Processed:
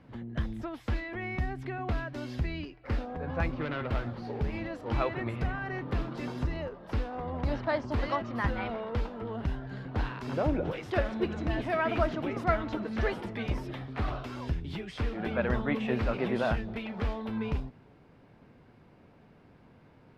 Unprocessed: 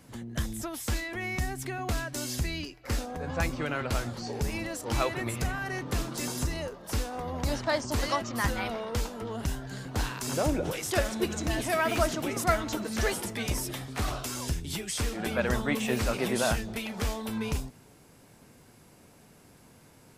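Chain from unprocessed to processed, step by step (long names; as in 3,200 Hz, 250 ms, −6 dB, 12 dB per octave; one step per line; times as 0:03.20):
0:03.50–0:04.69: phase distortion by the signal itself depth 0.22 ms
high-frequency loss of the air 360 metres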